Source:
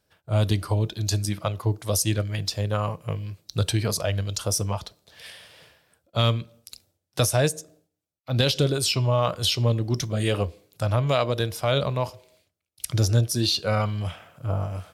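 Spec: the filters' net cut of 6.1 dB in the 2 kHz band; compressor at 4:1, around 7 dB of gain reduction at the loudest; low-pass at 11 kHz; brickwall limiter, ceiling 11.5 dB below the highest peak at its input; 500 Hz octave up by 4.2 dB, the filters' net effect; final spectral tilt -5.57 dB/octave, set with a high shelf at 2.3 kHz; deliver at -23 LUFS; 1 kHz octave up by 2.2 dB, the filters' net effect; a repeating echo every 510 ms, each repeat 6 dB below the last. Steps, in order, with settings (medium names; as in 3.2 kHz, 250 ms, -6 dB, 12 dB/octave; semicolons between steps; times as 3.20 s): low-pass 11 kHz; peaking EQ 500 Hz +4.5 dB; peaking EQ 1 kHz +4.5 dB; peaking EQ 2 kHz -7 dB; treble shelf 2.3 kHz -6.5 dB; compression 4:1, threshold -23 dBFS; peak limiter -21.5 dBFS; feedback delay 510 ms, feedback 50%, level -6 dB; trim +8.5 dB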